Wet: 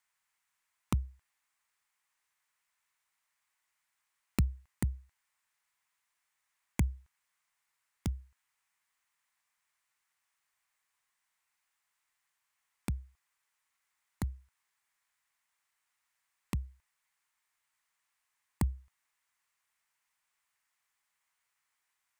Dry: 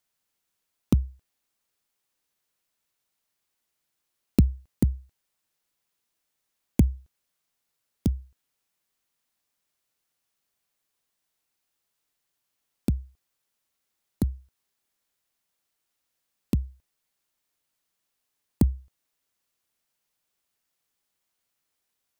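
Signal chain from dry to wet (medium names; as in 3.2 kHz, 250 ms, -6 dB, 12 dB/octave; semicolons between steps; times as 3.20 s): ten-band graphic EQ 250 Hz -6 dB, 500 Hz -5 dB, 1 kHz +11 dB, 2 kHz +12 dB, 8 kHz +7 dB; trim -8 dB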